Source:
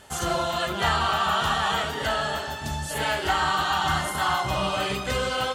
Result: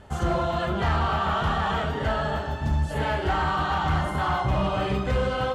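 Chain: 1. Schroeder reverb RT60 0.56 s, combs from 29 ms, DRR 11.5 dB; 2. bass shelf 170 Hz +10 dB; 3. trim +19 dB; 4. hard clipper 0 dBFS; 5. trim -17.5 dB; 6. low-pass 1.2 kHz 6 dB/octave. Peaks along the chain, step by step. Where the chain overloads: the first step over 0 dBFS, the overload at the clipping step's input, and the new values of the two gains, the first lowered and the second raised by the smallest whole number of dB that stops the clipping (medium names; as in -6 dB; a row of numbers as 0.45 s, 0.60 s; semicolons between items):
-11.5 dBFS, -9.5 dBFS, +9.5 dBFS, 0.0 dBFS, -17.5 dBFS, -17.5 dBFS; step 3, 9.5 dB; step 3 +9 dB, step 5 -7.5 dB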